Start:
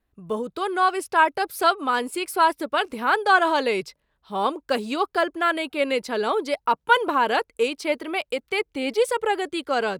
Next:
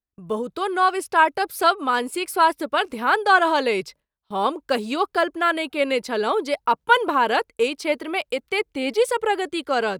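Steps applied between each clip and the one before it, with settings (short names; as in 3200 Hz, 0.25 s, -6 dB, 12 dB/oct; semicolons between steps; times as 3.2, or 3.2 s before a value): gate with hold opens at -39 dBFS; gain +1.5 dB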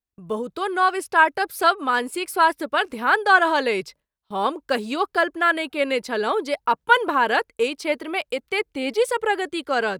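dynamic EQ 1700 Hz, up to +5 dB, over -36 dBFS, Q 3.4; gain -1 dB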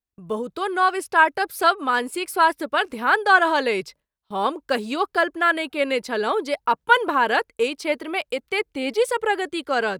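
nothing audible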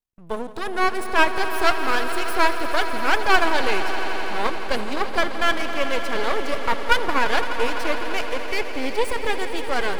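half-wave rectifier; swelling echo 85 ms, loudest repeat 5, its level -14 dB; gain +1.5 dB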